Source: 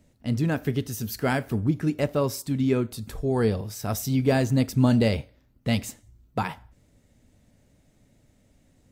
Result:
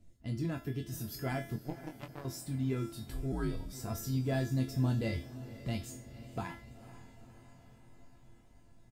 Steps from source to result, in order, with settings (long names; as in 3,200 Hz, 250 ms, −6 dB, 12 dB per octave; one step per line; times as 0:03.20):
spectral magnitudes quantised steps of 15 dB
low-shelf EQ 140 Hz +11.5 dB
in parallel at +0.5 dB: downward compressor, threshold −31 dBFS, peak gain reduction 18.5 dB
on the sum: tuned comb filter 340 Hz, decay 0.38 s, harmonics all, mix 90%
0:01.56–0:02.25: power curve on the samples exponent 3
double-tracking delay 23 ms −7 dB
on a send: feedback delay with all-pass diffusion 490 ms, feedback 62%, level −15.5 dB
0:03.32–0:03.73: on the sum: frequency shifter −71 Hz